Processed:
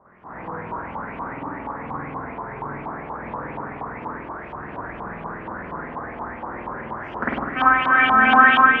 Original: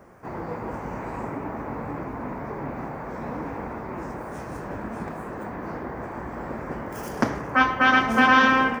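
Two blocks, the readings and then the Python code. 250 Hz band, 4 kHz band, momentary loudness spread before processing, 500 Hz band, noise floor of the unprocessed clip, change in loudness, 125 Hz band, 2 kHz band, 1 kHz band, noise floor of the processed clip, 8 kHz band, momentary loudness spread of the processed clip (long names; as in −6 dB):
−2.0 dB, +0.5 dB, 17 LU, −1.5 dB, −36 dBFS, +5.0 dB, −2.0 dB, +4.5 dB, +5.0 dB, −36 dBFS, below −25 dB, 19 LU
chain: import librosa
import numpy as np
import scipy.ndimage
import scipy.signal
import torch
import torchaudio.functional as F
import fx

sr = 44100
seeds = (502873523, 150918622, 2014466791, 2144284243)

y = fx.rev_spring(x, sr, rt60_s=1.5, pass_ms=(49,), chirp_ms=65, drr_db=-8.5)
y = fx.filter_lfo_lowpass(y, sr, shape='saw_up', hz=4.2, low_hz=910.0, high_hz=3300.0, q=5.1)
y = F.gain(torch.from_numpy(y), -11.5).numpy()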